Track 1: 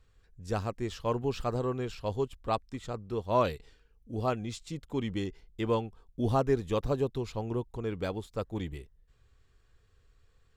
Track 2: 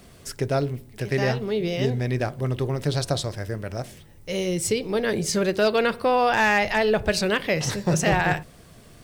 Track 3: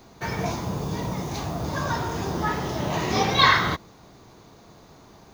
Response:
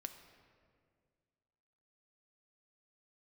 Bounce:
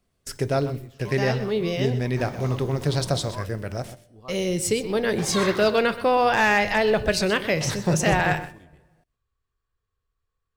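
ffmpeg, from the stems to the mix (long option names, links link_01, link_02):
-filter_complex "[0:a]equalizer=frequency=1100:width=4.6:gain=10,volume=-16dB[link_01];[1:a]agate=range=-25dB:threshold=-39dB:ratio=16:detection=peak,bandreject=frequency=297.5:width_type=h:width=4,bandreject=frequency=595:width_type=h:width=4,bandreject=frequency=892.5:width_type=h:width=4,bandreject=frequency=1190:width_type=h:width=4,bandreject=frequency=1487.5:width_type=h:width=4,bandreject=frequency=1785:width_type=h:width=4,bandreject=frequency=2082.5:width_type=h:width=4,bandreject=frequency=2380:width_type=h:width=4,bandreject=frequency=2677.5:width_type=h:width=4,bandreject=frequency=2975:width_type=h:width=4,bandreject=frequency=3272.5:width_type=h:width=4,bandreject=frequency=3570:width_type=h:width=4,bandreject=frequency=3867.5:width_type=h:width=4,bandreject=frequency=4165:width_type=h:width=4,bandreject=frequency=4462.5:width_type=h:width=4,bandreject=frequency=4760:width_type=h:width=4,bandreject=frequency=5057.5:width_type=h:width=4,bandreject=frequency=5355:width_type=h:width=4,bandreject=frequency=5652.5:width_type=h:width=4,bandreject=frequency=5950:width_type=h:width=4,bandreject=frequency=6247.5:width_type=h:width=4,bandreject=frequency=6545:width_type=h:width=4,bandreject=frequency=6842.5:width_type=h:width=4,bandreject=frequency=7140:width_type=h:width=4,bandreject=frequency=7437.5:width_type=h:width=4,bandreject=frequency=7735:width_type=h:width=4,bandreject=frequency=8032.5:width_type=h:width=4,bandreject=frequency=8330:width_type=h:width=4,bandreject=frequency=8627.5:width_type=h:width=4,bandreject=frequency=8925:width_type=h:width=4,bandreject=frequency=9222.5:width_type=h:width=4,bandreject=frequency=9520:width_type=h:width=4,bandreject=frequency=9817.5:width_type=h:width=4,bandreject=frequency=10115:width_type=h:width=4,volume=-0.5dB,asplit=3[link_02][link_03][link_04];[link_03]volume=-14.5dB[link_05];[link_04]volume=-13.5dB[link_06];[2:a]acontrast=34,adelay=1950,volume=-16.5dB,asplit=3[link_07][link_08][link_09];[link_07]atrim=end=3.31,asetpts=PTS-STARTPTS,afade=type=out:start_time=3.306:duration=0.004:curve=hsin[link_10];[link_08]atrim=start=3.31:end=5.18,asetpts=PTS-STARTPTS,volume=0[link_11];[link_09]atrim=start=5.18,asetpts=PTS-STARTPTS,afade=type=in:duration=0.004:curve=hsin[link_12];[link_10][link_11][link_12]concat=n=3:v=0:a=1[link_13];[3:a]atrim=start_sample=2205[link_14];[link_05][link_14]afir=irnorm=-1:irlink=0[link_15];[link_06]aecho=0:1:126:1[link_16];[link_01][link_02][link_13][link_15][link_16]amix=inputs=5:normalize=0"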